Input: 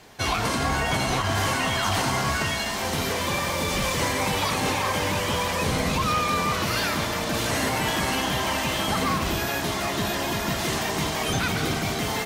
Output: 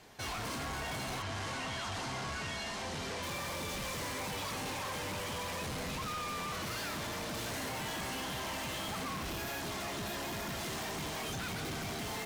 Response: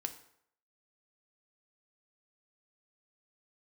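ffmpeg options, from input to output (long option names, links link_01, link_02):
-filter_complex "[0:a]asoftclip=type=hard:threshold=-29.5dB,asettb=1/sr,asplit=3[link_01][link_02][link_03];[link_01]atrim=end=1.224[link_04];[link_02]atrim=start=1.22:end=3.23,asetpts=PTS-STARTPTS,afade=type=in:duration=0.004:curve=qsin,afade=type=out:start_time=2.006:duration=0.004:curve=qsin,lowpass=7600[link_05];[link_03]atrim=start=3.226[link_06];[link_04][link_05]acrossfade=duration=0.004:curve1=hsin:curve2=qsin[link_07];[link_07][link_06]acrossfade=duration=0.004:curve1=qsin:curve2=hsin,volume=-7.5dB"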